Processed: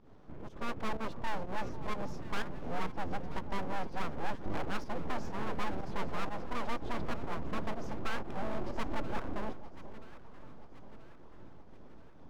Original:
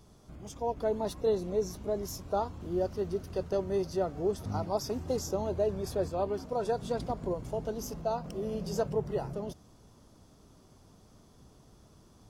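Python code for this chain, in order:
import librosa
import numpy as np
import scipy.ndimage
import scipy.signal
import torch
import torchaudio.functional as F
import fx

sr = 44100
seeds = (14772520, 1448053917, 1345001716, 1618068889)

p1 = scipy.signal.sosfilt(scipy.signal.butter(2, 2200.0, 'lowpass', fs=sr, output='sos'), x)
p2 = fx.low_shelf(p1, sr, hz=430.0, db=4.0)
p3 = fx.rider(p2, sr, range_db=10, speed_s=0.5)
p4 = p2 + (p3 * librosa.db_to_amplitude(1.5))
p5 = np.abs(p4)
p6 = fx.volume_shaper(p5, sr, bpm=124, per_beat=1, depth_db=-12, release_ms=120.0, shape='fast start')
p7 = 10.0 ** (-19.0 / 20.0) * np.tanh(p6 / 10.0 ** (-19.0 / 20.0))
p8 = p7 + fx.echo_alternate(p7, sr, ms=490, hz=980.0, feedback_pct=70, wet_db=-13, dry=0)
y = p8 * librosa.db_to_amplitude(-6.0)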